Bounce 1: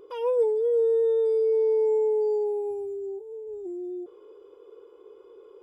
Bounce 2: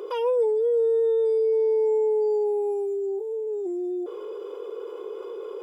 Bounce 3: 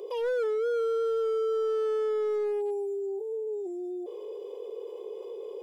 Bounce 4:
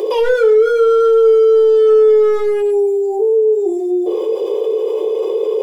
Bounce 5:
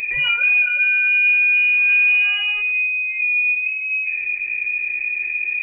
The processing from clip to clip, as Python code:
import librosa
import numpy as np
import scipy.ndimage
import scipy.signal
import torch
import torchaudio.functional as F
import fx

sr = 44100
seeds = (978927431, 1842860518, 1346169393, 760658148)

y1 = scipy.signal.sosfilt(scipy.signal.butter(4, 360.0, 'highpass', fs=sr, output='sos'), x)
y1 = fx.env_flatten(y1, sr, amount_pct=50)
y2 = fx.fixed_phaser(y1, sr, hz=570.0, stages=4)
y2 = np.clip(10.0 ** (23.5 / 20.0) * y2, -1.0, 1.0) / 10.0 ** (23.5 / 20.0)
y2 = F.gain(torch.from_numpy(y2), -2.5).numpy()
y3 = fx.room_shoebox(y2, sr, seeds[0], volume_m3=32.0, walls='mixed', distance_m=0.48)
y3 = fx.env_flatten(y3, sr, amount_pct=50)
y3 = F.gain(torch.from_numpy(y3), 9.0).numpy()
y4 = fx.freq_invert(y3, sr, carrier_hz=2900)
y4 = F.gain(torch.from_numpy(y4), -6.0).numpy()